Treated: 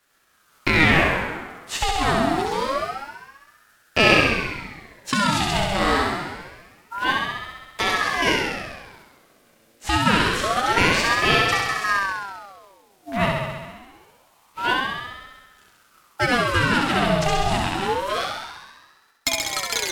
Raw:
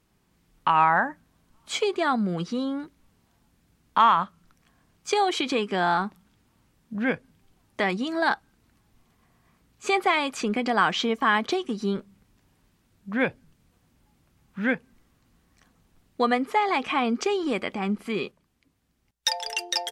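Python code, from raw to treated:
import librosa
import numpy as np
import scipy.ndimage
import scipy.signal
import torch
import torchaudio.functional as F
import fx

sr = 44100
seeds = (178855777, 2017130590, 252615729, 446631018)

y = fx.envelope_flatten(x, sr, power=0.6)
y = fx.room_flutter(y, sr, wall_m=11.3, rt60_s=1.4)
y = fx.ring_lfo(y, sr, carrier_hz=970.0, swing_pct=60, hz=0.26)
y = F.gain(torch.from_numpy(y), 4.0).numpy()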